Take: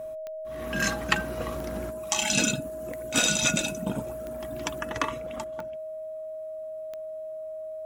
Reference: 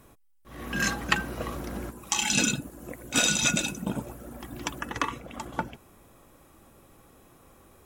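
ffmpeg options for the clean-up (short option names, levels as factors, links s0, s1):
-af "adeclick=t=4,bandreject=f=630:w=30,asetnsamples=n=441:p=0,asendcmd='5.44 volume volume 11.5dB',volume=1"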